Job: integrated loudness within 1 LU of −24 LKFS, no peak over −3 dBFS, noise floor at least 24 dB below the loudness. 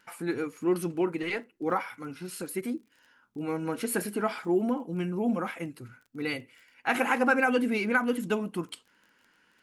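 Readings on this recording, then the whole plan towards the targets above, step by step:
crackle rate 22 per second; integrated loudness −30.0 LKFS; sample peak −11.0 dBFS; target loudness −24.0 LKFS
→ click removal
level +6 dB

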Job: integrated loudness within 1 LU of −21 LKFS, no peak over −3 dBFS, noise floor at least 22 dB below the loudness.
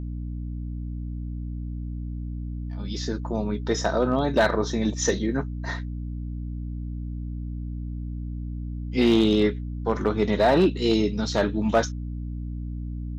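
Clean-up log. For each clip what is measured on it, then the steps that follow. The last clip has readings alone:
share of clipped samples 0.3%; peaks flattened at −12.5 dBFS; mains hum 60 Hz; hum harmonics up to 300 Hz; level of the hum −29 dBFS; integrated loudness −26.5 LKFS; sample peak −12.5 dBFS; target loudness −21.0 LKFS
→ clipped peaks rebuilt −12.5 dBFS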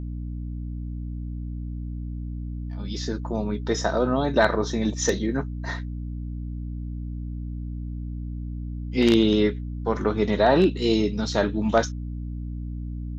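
share of clipped samples 0.0%; mains hum 60 Hz; hum harmonics up to 300 Hz; level of the hum −29 dBFS
→ mains-hum notches 60/120/180/240/300 Hz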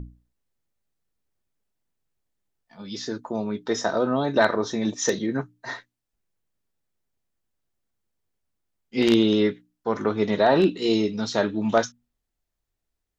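mains hum none found; integrated loudness −23.5 LKFS; sample peak −3.0 dBFS; target loudness −21.0 LKFS
→ level +2.5 dB
brickwall limiter −3 dBFS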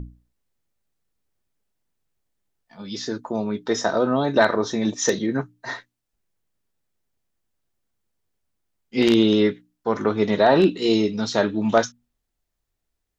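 integrated loudness −21.5 LKFS; sample peak −3.0 dBFS; background noise floor −79 dBFS

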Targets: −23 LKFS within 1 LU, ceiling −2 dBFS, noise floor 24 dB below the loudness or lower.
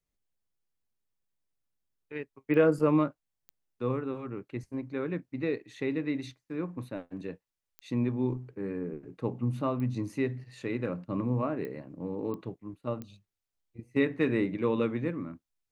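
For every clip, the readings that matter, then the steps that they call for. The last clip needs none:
number of clicks 7; integrated loudness −32.0 LKFS; sample peak −12.0 dBFS; target loudness −23.0 LKFS
→ click removal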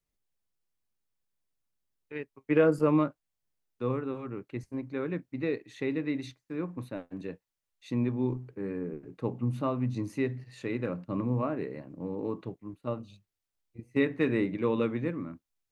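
number of clicks 0; integrated loudness −32.0 LKFS; sample peak −12.0 dBFS; target loudness −23.0 LKFS
→ level +9 dB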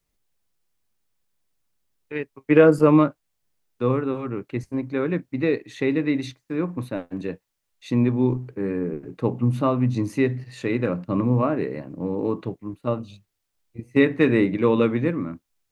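integrated loudness −23.0 LKFS; sample peak −3.0 dBFS; background noise floor −78 dBFS

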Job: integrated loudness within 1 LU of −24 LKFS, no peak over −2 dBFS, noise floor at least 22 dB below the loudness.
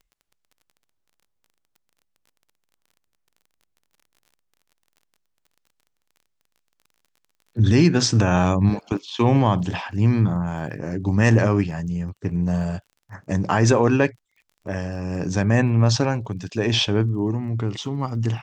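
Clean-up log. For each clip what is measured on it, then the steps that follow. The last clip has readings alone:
crackle rate 28 per second; integrated loudness −21.0 LKFS; sample peak −4.0 dBFS; target loudness −24.0 LKFS
→ click removal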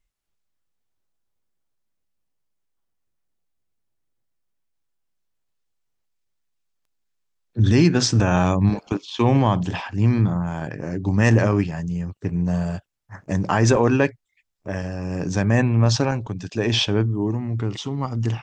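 crackle rate 0.054 per second; integrated loudness −21.0 LKFS; sample peak −4.0 dBFS; target loudness −24.0 LKFS
→ level −3 dB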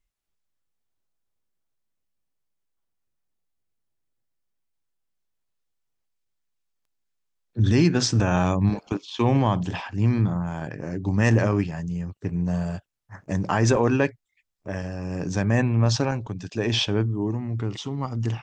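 integrated loudness −24.0 LKFS; sample peak −7.0 dBFS; background noise floor −77 dBFS

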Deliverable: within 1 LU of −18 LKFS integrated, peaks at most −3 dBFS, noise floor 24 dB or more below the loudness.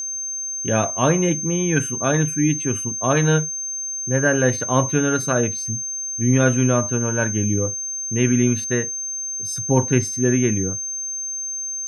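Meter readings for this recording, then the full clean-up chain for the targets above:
interfering tone 6,300 Hz; level of the tone −25 dBFS; integrated loudness −20.5 LKFS; sample peak −3.5 dBFS; target loudness −18.0 LKFS
→ notch filter 6,300 Hz, Q 30
level +2.5 dB
brickwall limiter −3 dBFS

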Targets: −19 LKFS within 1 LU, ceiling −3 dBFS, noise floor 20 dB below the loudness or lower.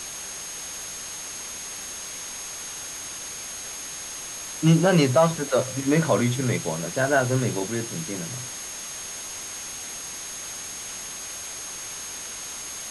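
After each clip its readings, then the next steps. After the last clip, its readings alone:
interfering tone 6,500 Hz; level of the tone −36 dBFS; background noise floor −36 dBFS; target noise floor −47 dBFS; integrated loudness −27.0 LKFS; sample peak −7.5 dBFS; target loudness −19.0 LKFS
→ notch filter 6,500 Hz, Q 30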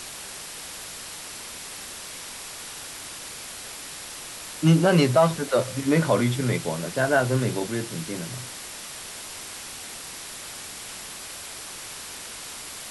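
interfering tone none found; background noise floor −39 dBFS; target noise floor −48 dBFS
→ broadband denoise 9 dB, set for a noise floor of −39 dBFS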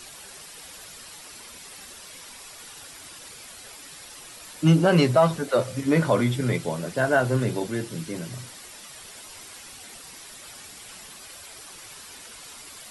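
background noise floor −44 dBFS; integrated loudness −23.0 LKFS; sample peak −7.5 dBFS; target loudness −19.0 LKFS
→ level +4 dB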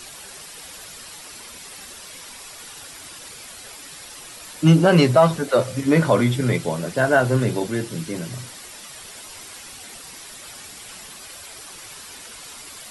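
integrated loudness −19.0 LKFS; sample peak −3.5 dBFS; background noise floor −40 dBFS

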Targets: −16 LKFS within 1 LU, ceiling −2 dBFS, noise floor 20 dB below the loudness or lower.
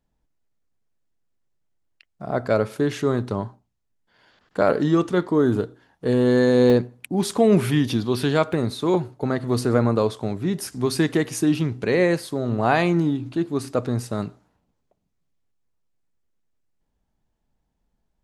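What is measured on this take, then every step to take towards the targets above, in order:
number of dropouts 2; longest dropout 1.1 ms; integrated loudness −22.0 LKFS; sample peak −5.0 dBFS; target loudness −16.0 LKFS
→ repair the gap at 0:06.70/0:08.53, 1.1 ms
level +6 dB
brickwall limiter −2 dBFS

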